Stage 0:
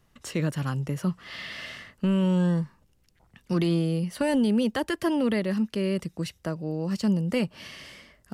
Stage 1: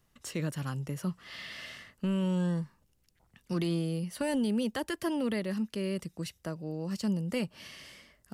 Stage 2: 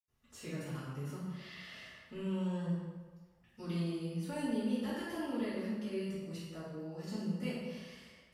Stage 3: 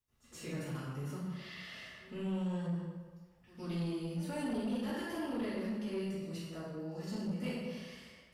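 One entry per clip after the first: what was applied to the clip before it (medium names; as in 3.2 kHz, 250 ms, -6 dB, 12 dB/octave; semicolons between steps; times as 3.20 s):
treble shelf 5.4 kHz +6.5 dB; trim -6.5 dB
reverberation RT60 1.4 s, pre-delay 76 ms; trim +1 dB
saturation -32.5 dBFS, distortion -15 dB; pre-echo 121 ms -18 dB; trim +2 dB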